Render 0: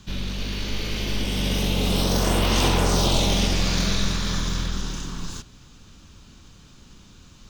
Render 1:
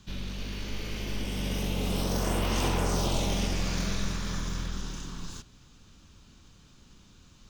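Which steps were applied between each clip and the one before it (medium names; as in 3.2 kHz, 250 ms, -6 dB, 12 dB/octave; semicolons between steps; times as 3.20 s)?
dynamic bell 3.9 kHz, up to -6 dB, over -40 dBFS, Q 2; trim -7 dB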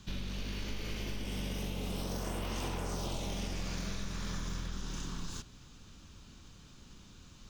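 compression, threshold -35 dBFS, peak gain reduction 12 dB; trim +1 dB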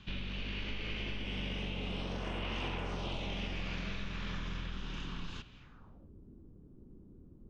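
low-pass sweep 2.8 kHz -> 370 Hz, 5.58–6.12 s; trim -1.5 dB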